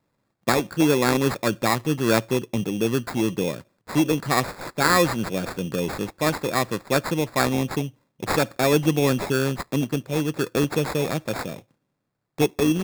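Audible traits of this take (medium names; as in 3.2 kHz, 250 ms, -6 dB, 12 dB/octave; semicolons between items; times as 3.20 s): aliases and images of a low sample rate 3 kHz, jitter 0%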